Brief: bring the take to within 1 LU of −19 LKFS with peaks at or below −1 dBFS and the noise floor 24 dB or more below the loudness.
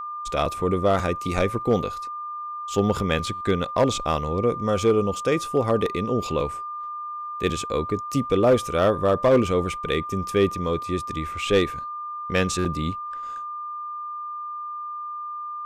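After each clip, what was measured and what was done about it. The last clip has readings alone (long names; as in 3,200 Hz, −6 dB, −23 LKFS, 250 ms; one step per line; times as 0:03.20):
share of clipped samples 0.3%; peaks flattened at −11.5 dBFS; interfering tone 1,200 Hz; level of the tone −30 dBFS; integrated loudness −24.5 LKFS; sample peak −11.5 dBFS; target loudness −19.0 LKFS
→ clipped peaks rebuilt −11.5 dBFS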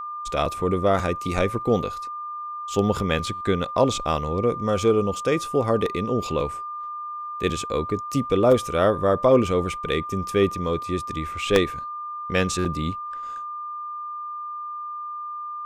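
share of clipped samples 0.0%; interfering tone 1,200 Hz; level of the tone −30 dBFS
→ notch filter 1,200 Hz, Q 30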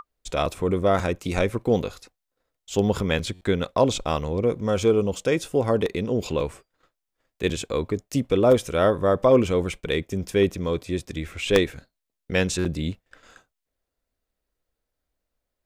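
interfering tone none found; integrated loudness −24.0 LKFS; sample peak −2.5 dBFS; target loudness −19.0 LKFS
→ level +5 dB
brickwall limiter −1 dBFS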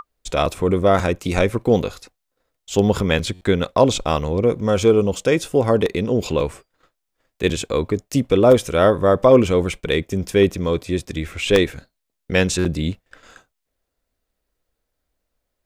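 integrated loudness −19.0 LKFS; sample peak −1.0 dBFS; background noise floor −78 dBFS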